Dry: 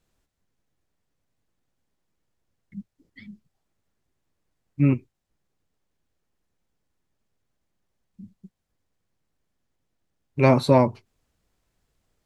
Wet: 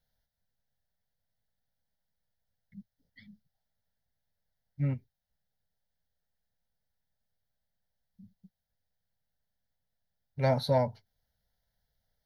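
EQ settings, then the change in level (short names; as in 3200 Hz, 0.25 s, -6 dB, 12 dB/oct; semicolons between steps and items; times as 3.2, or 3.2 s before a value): high shelf 6400 Hz +8 dB; fixed phaser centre 1700 Hz, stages 8; -6.5 dB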